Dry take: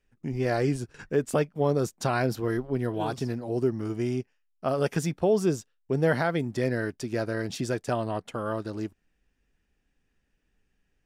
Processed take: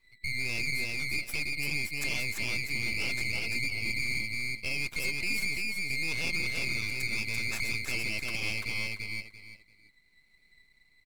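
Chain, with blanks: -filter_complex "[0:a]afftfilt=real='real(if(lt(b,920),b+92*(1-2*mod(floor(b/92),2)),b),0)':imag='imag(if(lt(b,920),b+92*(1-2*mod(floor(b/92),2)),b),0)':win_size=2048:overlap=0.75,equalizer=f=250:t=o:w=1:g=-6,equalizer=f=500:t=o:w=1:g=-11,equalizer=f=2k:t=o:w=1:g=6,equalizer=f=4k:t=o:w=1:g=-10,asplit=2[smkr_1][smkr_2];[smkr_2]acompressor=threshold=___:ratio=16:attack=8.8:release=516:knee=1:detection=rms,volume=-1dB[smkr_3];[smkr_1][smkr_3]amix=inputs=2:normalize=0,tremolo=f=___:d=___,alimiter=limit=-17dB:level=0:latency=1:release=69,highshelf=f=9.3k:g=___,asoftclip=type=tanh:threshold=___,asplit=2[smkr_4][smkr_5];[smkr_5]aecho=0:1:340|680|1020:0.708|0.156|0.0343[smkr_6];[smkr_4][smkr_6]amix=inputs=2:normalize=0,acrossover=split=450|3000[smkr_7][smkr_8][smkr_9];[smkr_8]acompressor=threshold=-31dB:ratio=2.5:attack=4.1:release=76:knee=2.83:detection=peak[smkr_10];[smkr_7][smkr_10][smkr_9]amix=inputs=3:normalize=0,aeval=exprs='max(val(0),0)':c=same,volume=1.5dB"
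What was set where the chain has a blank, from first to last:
-30dB, 0.96, 0.3, 4, -20.5dB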